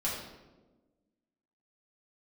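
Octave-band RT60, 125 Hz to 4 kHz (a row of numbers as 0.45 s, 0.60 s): 1.4 s, 1.8 s, 1.4 s, 1.0 s, 0.80 s, 0.70 s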